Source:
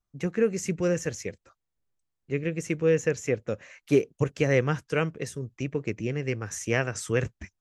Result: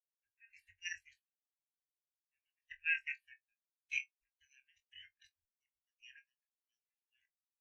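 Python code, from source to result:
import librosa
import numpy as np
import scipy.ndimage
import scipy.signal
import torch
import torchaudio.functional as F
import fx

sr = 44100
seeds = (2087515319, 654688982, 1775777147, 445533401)

p1 = fx.fade_out_tail(x, sr, length_s=1.54)
p2 = fx.spec_gate(p1, sr, threshold_db=-25, keep='weak')
p3 = scipy.signal.sosfilt(scipy.signal.cheby1(5, 1.0, [110.0, 1600.0], 'bandstop', fs=sr, output='sos'), p2)
p4 = fx.level_steps(p3, sr, step_db=9)
p5 = fx.step_gate(p4, sr, bpm=63, pattern='..xxx..x.', floor_db=-12.0, edge_ms=4.5)
p6 = p5 + fx.room_flutter(p5, sr, wall_m=3.9, rt60_s=0.23, dry=0)
p7 = fx.spectral_expand(p6, sr, expansion=2.5)
y = p7 * 10.0 ** (8.0 / 20.0)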